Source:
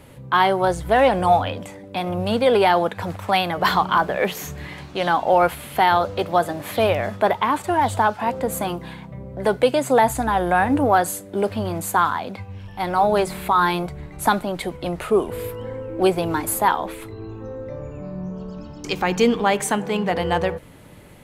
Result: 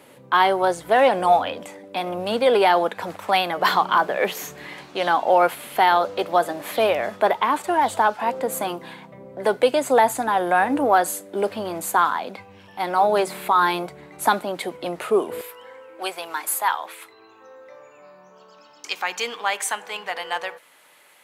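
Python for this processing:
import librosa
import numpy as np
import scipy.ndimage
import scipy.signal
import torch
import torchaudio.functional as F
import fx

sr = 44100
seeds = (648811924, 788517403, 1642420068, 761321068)

y = fx.highpass(x, sr, hz=fx.steps((0.0, 290.0), (15.41, 1000.0)), slope=12)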